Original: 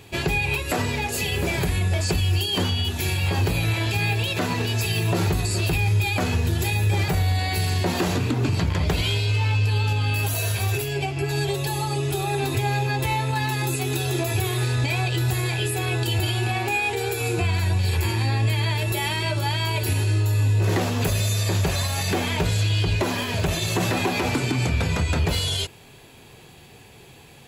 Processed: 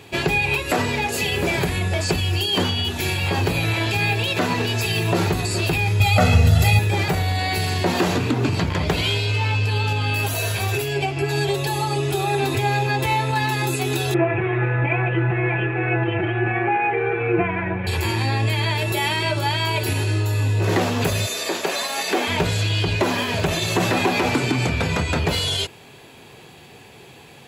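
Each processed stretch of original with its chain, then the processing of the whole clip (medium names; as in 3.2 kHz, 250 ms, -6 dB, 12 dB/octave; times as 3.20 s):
6.00–6.79 s: bass shelf 240 Hz +6 dB + comb 1.5 ms, depth 96%
14.14–17.87 s: CVSD coder 64 kbps + steep low-pass 2.5 kHz 48 dB/octave + comb 5.9 ms, depth 75%
21.25–22.27 s: high-pass 260 Hz 24 dB/octave + crackle 93 per s -34 dBFS
whole clip: high-pass 170 Hz 6 dB/octave; treble shelf 5.6 kHz -6.5 dB; trim +5 dB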